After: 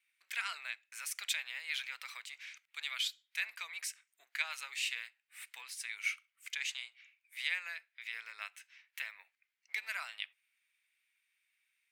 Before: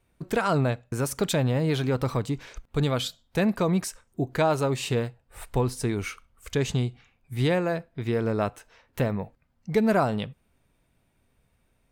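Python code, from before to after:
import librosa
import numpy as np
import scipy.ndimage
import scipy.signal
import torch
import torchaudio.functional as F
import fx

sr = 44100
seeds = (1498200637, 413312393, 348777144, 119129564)

y = fx.octave_divider(x, sr, octaves=1, level_db=2.0)
y = fx.ladder_highpass(y, sr, hz=1900.0, resonance_pct=55)
y = F.gain(torch.from_numpy(y), 3.5).numpy()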